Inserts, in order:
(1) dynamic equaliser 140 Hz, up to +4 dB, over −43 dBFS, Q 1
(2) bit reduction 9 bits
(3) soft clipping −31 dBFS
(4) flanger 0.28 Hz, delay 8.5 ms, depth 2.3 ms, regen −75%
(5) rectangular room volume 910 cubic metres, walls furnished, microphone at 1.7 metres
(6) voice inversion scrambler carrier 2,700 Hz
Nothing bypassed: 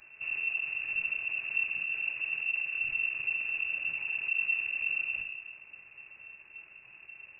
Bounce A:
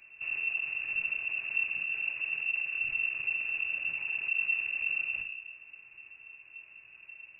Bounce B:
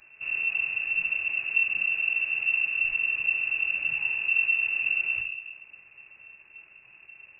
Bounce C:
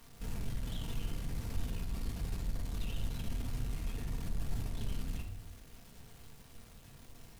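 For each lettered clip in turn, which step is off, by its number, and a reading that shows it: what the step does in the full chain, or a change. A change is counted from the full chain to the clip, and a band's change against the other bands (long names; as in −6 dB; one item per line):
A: 2, distortion level −29 dB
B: 3, distortion level −9 dB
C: 6, change in crest factor −2.5 dB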